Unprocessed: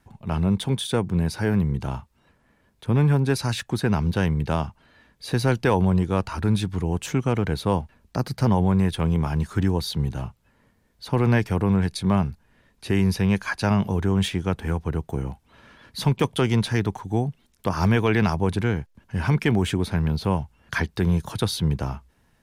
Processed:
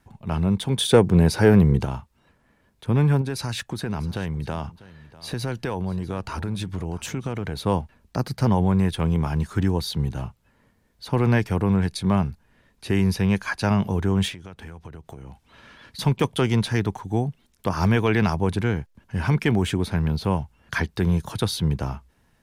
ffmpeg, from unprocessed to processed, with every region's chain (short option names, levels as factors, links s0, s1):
-filter_complex "[0:a]asettb=1/sr,asplit=3[s0][s1][s2];[s0]atrim=end=0.784[s3];[s1]atrim=start=0.78:end=1.85,asetpts=PTS-STARTPTS,afade=t=in:d=0.004:c=qsin,afade=t=out:st=1.066:d=0.004:c=qsin,equalizer=f=460:w=1.5:g=5.5,acontrast=52[s4];[s2]atrim=start=1.846[s5];[s3][s4]acrossfade=d=0.004:c1=hsin:c2=qsin[s6];[s6][s5]acrossfade=d=0.004:c1=qsin:c2=hsin,asettb=1/sr,asplit=3[s7][s8][s9];[s7]atrim=end=3.214[s10];[s8]atrim=start=3.21:end=7.57,asetpts=PTS-STARTPTS,afade=t=in:d=0.004:c=qsin,afade=t=out:st=4.356:d=0.004:c=qsin,acompressor=threshold=0.0631:ratio=4:attack=3.2:release=140:knee=1:detection=peak,aecho=1:1:646:0.112,atrim=end_sample=192276[s11];[s9]atrim=start=7.566[s12];[s10][s11]acrossfade=d=0.004:c1=hsin:c2=qsin[s13];[s13][s12]acrossfade=d=0.004:c1=qsin:c2=hsin,asettb=1/sr,asplit=3[s14][s15][s16];[s14]atrim=end=14.324[s17];[s15]atrim=start=14.32:end=15.99,asetpts=PTS-STARTPTS,afade=t=in:d=0.004:c=qsin,afade=t=out:st=1.666:d=0.004:c=qsin,highshelf=f=2300:g=10.5,acompressor=threshold=0.0178:ratio=12:attack=3.2:release=140:knee=1:detection=peak,lowpass=f=3500:p=1[s18];[s16]atrim=start=15.986[s19];[s17][s18]acrossfade=d=0.004:c1=hsin:c2=qsin[s20];[s20][s19]acrossfade=d=0.004:c1=qsin:c2=hsin"